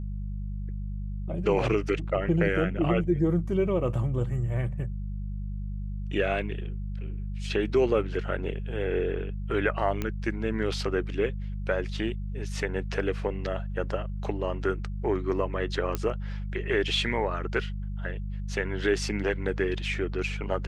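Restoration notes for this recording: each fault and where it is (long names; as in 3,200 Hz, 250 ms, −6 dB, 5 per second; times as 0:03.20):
mains hum 50 Hz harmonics 4 −33 dBFS
0:10.02: click −16 dBFS
0:15.95: click −14 dBFS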